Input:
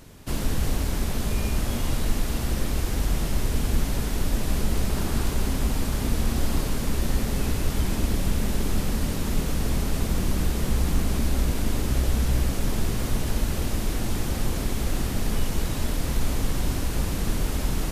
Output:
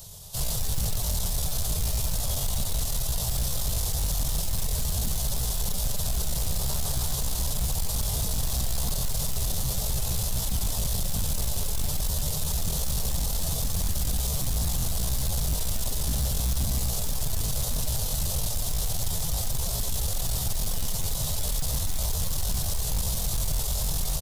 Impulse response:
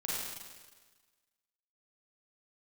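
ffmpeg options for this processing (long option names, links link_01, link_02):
-filter_complex "[0:a]acrossover=split=400[link_01][link_02];[link_02]aexciter=amount=5.3:drive=4.3:freq=2200[link_03];[link_01][link_03]amix=inputs=2:normalize=0,firequalizer=gain_entry='entry(150,0);entry(270,-27);entry(390,-9);entry(620,0);entry(1000,-3);entry(2300,-21);entry(3500,-7);entry(14000,-6)':delay=0.05:min_phase=1,acrossover=split=2500[link_04][link_05];[link_05]acompressor=threshold=-26dB:ratio=4:attack=1:release=60[link_06];[link_04][link_06]amix=inputs=2:normalize=0,aeval=exprs='0.224*sin(PI/2*2*val(0)/0.224)':channel_layout=same,atempo=0.74,volume=-8.5dB"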